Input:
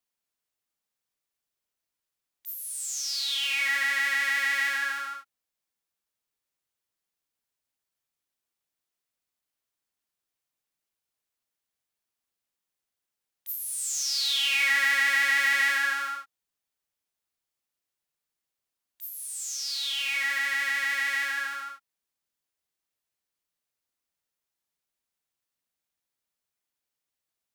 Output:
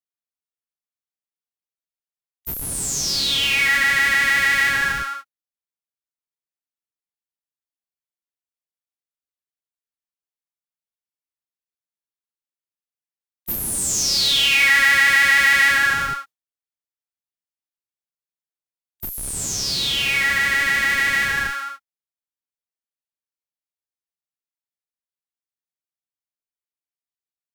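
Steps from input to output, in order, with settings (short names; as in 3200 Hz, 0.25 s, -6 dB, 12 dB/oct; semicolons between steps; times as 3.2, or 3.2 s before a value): in parallel at -9 dB: Schmitt trigger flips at -26.5 dBFS; on the sum: gate with hold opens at -29 dBFS; gain +8 dB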